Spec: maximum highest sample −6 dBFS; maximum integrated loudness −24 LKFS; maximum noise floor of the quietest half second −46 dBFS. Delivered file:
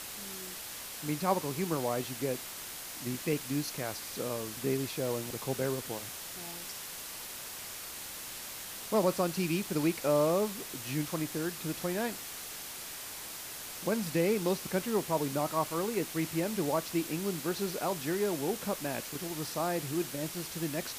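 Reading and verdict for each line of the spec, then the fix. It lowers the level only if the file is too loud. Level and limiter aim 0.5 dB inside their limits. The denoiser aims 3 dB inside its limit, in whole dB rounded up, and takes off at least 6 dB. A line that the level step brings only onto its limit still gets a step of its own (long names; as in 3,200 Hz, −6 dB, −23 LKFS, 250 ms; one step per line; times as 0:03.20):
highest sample −14.0 dBFS: in spec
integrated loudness −34.0 LKFS: in spec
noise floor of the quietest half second −43 dBFS: out of spec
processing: broadband denoise 6 dB, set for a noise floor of −43 dBFS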